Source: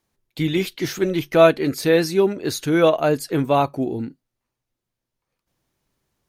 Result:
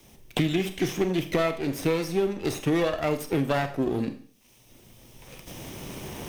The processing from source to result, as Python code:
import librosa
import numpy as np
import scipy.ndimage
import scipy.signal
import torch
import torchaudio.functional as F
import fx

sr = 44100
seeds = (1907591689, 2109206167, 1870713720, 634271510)

y = fx.lower_of_two(x, sr, delay_ms=0.35)
y = fx.recorder_agc(y, sr, target_db=-7.0, rise_db_per_s=6.6, max_gain_db=30)
y = fx.rev_schroeder(y, sr, rt60_s=0.38, comb_ms=29, drr_db=9.5)
y = fx.band_squash(y, sr, depth_pct=100)
y = y * 10.0 ** (-9.0 / 20.0)